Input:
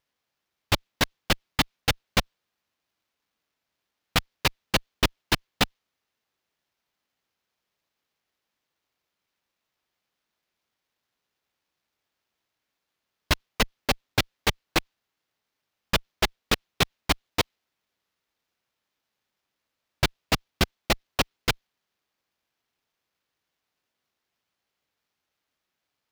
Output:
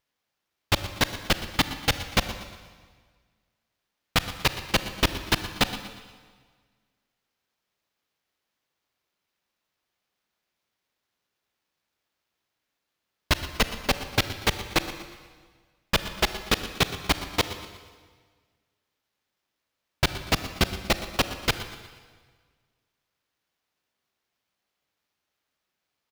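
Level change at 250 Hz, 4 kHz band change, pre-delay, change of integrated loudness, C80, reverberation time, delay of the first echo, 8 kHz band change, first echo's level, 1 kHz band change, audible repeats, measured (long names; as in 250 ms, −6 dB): +0.5 dB, +0.5 dB, 32 ms, +0.5 dB, 10.5 dB, 1.6 s, 119 ms, +0.5 dB, −15.5 dB, +0.5 dB, 3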